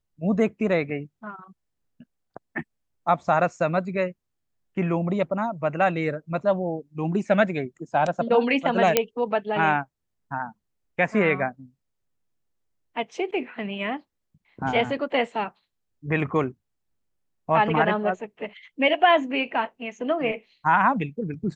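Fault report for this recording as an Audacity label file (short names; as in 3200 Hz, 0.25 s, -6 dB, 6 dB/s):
8.970000	8.970000	pop -2 dBFS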